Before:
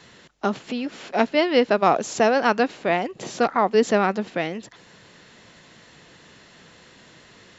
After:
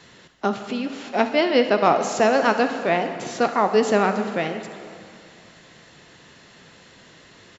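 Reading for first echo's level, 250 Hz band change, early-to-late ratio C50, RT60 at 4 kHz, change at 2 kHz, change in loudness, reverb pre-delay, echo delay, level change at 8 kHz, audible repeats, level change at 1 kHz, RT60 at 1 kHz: -16.0 dB, +0.5 dB, 8.0 dB, 2.2 s, +1.0 dB, +1.0 dB, 5 ms, 63 ms, n/a, 1, +1.0 dB, 2.4 s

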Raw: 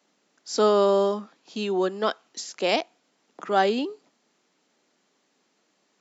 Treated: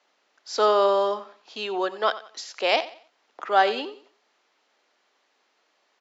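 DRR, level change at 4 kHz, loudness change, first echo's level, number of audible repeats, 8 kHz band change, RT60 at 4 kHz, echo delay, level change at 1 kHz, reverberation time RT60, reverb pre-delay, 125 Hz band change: none, +2.0 dB, +0.5 dB, -16.0 dB, 2, n/a, none, 90 ms, +3.5 dB, none, none, n/a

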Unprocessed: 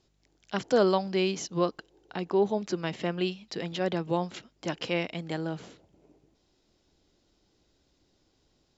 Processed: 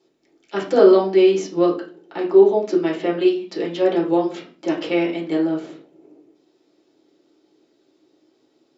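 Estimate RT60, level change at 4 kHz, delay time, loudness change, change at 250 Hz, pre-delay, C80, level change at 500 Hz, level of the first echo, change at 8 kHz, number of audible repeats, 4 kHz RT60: 0.40 s, +3.0 dB, none, +11.5 dB, +12.0 dB, 3 ms, 13.5 dB, +12.5 dB, none, n/a, none, 0.35 s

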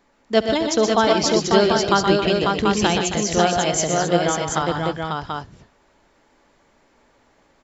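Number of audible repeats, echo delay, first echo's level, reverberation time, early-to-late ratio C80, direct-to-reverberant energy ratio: 5, 70 ms, -16.5 dB, none, none, none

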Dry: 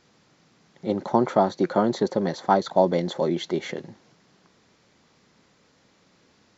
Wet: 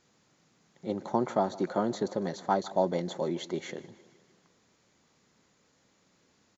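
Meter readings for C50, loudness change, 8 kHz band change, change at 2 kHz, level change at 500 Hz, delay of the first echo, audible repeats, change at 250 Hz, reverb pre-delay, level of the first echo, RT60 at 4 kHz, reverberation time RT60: none, -7.5 dB, n/a, -7.5 dB, -7.5 dB, 0.154 s, 4, -7.5 dB, none, -19.5 dB, none, none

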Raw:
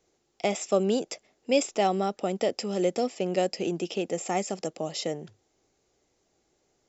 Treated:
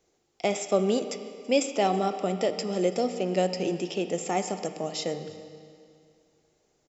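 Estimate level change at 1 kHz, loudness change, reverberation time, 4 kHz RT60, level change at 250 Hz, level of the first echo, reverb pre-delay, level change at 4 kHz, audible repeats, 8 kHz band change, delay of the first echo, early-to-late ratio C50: +1.0 dB, +0.5 dB, 2.3 s, 2.2 s, +0.5 dB, -23.5 dB, 13 ms, +0.5 dB, 1, n/a, 0.33 s, 9.0 dB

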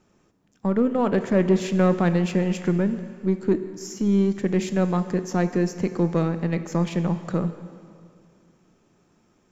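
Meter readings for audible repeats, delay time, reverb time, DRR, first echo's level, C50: none, none, 2.3 s, 10.0 dB, none, 11.0 dB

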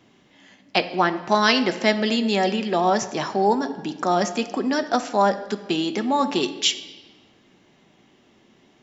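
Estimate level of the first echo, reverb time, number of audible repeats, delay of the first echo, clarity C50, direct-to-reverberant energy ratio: none, 1.3 s, none, none, 12.5 dB, 8.0 dB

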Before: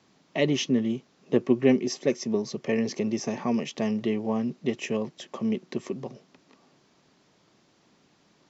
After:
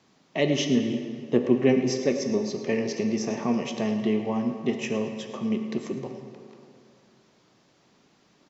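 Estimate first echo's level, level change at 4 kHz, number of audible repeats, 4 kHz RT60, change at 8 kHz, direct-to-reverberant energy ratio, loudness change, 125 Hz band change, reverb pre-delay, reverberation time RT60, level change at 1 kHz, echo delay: -14.5 dB, +1.0 dB, 1, 1.5 s, n/a, 4.5 dB, +1.0 dB, +1.5 dB, 13 ms, 2.4 s, +1.5 dB, 0.109 s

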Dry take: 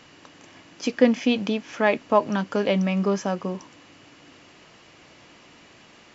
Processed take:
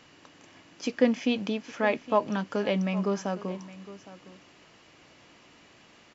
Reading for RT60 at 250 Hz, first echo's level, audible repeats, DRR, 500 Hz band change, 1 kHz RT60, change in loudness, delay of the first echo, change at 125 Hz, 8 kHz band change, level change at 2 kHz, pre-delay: none, -17.0 dB, 1, none, -5.0 dB, none, -5.0 dB, 0.812 s, -5.0 dB, n/a, -5.0 dB, none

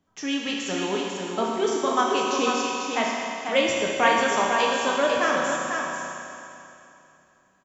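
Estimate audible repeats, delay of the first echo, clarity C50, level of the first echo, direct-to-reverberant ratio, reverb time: 1, 0.494 s, -2.5 dB, -5.5 dB, -4.5 dB, 2.8 s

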